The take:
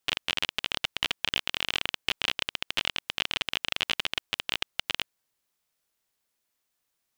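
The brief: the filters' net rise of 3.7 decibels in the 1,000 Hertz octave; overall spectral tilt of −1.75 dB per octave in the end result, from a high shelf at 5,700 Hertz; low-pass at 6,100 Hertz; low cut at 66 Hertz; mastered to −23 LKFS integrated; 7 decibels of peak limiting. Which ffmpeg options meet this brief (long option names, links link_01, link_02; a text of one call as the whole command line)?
ffmpeg -i in.wav -af "highpass=66,lowpass=6100,equalizer=frequency=1000:width_type=o:gain=5,highshelf=frequency=5700:gain=-8,volume=12dB,alimiter=limit=-2dB:level=0:latency=1" out.wav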